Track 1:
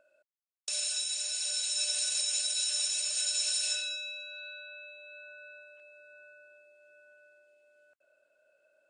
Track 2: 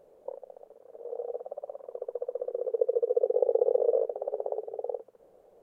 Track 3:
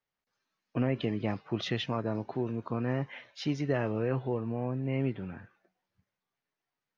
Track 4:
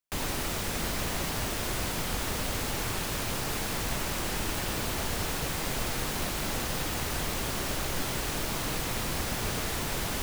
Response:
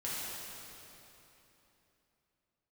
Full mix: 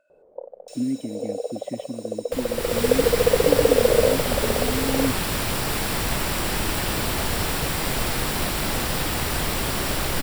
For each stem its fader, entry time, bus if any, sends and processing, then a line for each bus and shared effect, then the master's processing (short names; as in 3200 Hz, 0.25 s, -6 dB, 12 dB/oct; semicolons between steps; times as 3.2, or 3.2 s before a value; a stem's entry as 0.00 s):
-1.0 dB, 0.00 s, no send, soft clip -36.5 dBFS, distortion -7 dB; auto duck -10 dB, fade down 1.20 s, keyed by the third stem
+2.5 dB, 0.10 s, no send, LPF 1100 Hz 12 dB/oct; AGC gain up to 4.5 dB
+2.5 dB, 0.00 s, no send, vowel filter i; tilt -4 dB/oct
-3.0 dB, 2.20 s, no send, notch 6400 Hz, Q 6.7; AGC gain up to 10 dB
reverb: off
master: dry